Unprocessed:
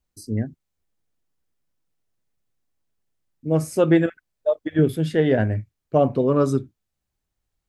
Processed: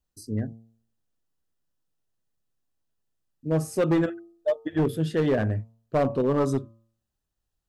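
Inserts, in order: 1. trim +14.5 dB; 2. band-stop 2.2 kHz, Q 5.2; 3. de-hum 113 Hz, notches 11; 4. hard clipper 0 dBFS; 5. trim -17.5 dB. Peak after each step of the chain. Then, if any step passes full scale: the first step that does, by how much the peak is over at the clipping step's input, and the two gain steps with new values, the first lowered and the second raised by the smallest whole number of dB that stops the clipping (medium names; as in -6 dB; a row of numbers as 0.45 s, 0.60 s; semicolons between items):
+8.5 dBFS, +8.5 dBFS, +8.5 dBFS, 0.0 dBFS, -17.5 dBFS; step 1, 8.5 dB; step 1 +5.5 dB, step 5 -8.5 dB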